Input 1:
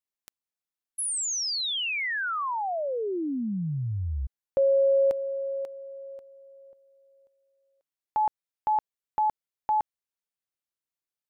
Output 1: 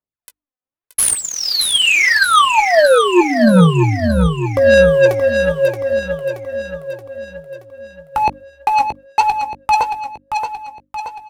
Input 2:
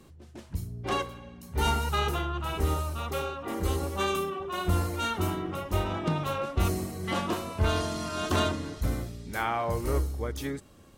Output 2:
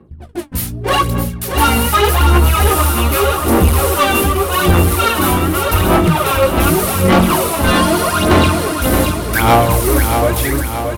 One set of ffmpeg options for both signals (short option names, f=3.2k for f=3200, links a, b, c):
-filter_complex "[0:a]highpass=f=49:w=0.5412,highpass=f=49:w=1.3066,agate=range=-17dB:threshold=-53dB:ratio=16:release=28:detection=peak,bandreject=f=50:t=h:w=6,bandreject=f=100:t=h:w=6,bandreject=f=150:t=h:w=6,bandreject=f=200:t=h:w=6,bandreject=f=250:t=h:w=6,bandreject=f=300:t=h:w=6,acrossover=split=3700[a][b];[b]acompressor=threshold=-46dB:ratio=4:attack=1:release=60[c];[a][c]amix=inputs=2:normalize=0,apsyclip=19dB,aexciter=amount=10.5:drive=7.2:freq=9.4k,aphaser=in_gain=1:out_gain=1:delay=4:decay=0.77:speed=0.84:type=sinusoidal,adynamicsmooth=sensitivity=5.5:basefreq=1.6k,asoftclip=type=tanh:threshold=-4dB,asplit=2[d][e];[e]adelay=17,volume=-10.5dB[f];[d][f]amix=inputs=2:normalize=0,asplit=2[g][h];[h]aecho=0:1:626|1252|1878|2504|3130|3756|4382:0.473|0.251|0.133|0.0704|0.0373|0.0198|0.0105[i];[g][i]amix=inputs=2:normalize=0,volume=-3.5dB"